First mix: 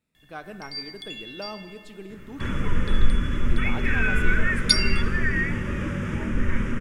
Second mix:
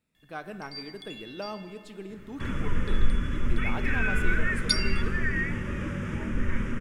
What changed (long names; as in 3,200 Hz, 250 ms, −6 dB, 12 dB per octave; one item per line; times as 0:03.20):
first sound −6.5 dB
second sound −4.0 dB